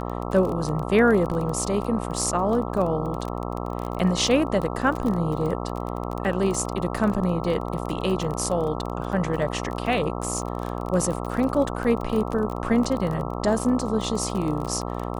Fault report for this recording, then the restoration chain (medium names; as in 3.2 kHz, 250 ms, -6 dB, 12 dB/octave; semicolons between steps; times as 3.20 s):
buzz 60 Hz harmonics 22 -30 dBFS
crackle 26 per s -27 dBFS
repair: de-click; de-hum 60 Hz, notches 22